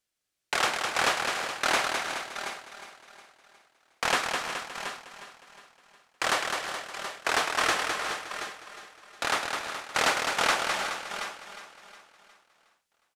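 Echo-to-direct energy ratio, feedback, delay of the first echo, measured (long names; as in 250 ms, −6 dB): −2.0 dB, repeats not evenly spaced, 208 ms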